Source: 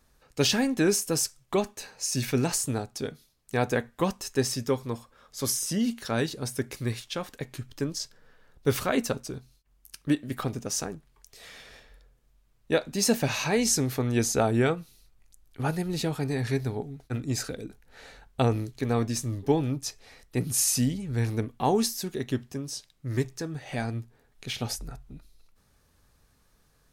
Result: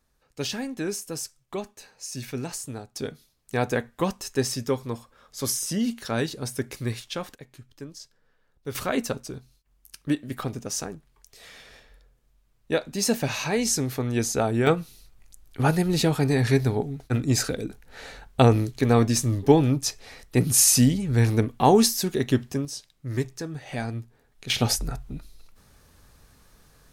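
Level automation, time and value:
−6.5 dB
from 0:02.96 +1 dB
from 0:07.35 −9.5 dB
from 0:08.75 0 dB
from 0:14.67 +7 dB
from 0:22.65 +0.5 dB
from 0:24.50 +9 dB

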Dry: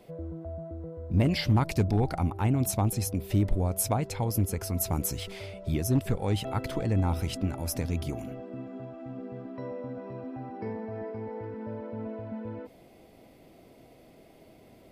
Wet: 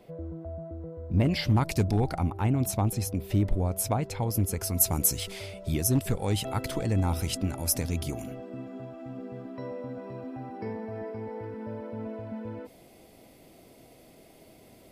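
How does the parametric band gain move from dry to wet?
parametric band 10,000 Hz 2.1 octaves
0:01.22 −3.5 dB
0:01.90 +8 dB
0:02.27 −1.5 dB
0:04.20 −1.5 dB
0:04.79 +9 dB

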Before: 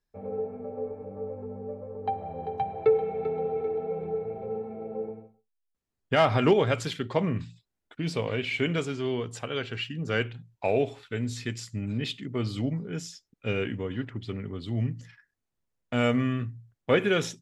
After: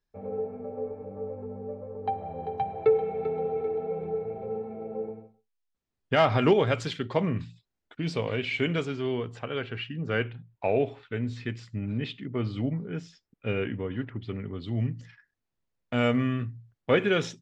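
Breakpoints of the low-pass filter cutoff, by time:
0:08.63 6,200 Hz
0:09.37 2,800 Hz
0:14.12 2,800 Hz
0:14.88 5,400 Hz

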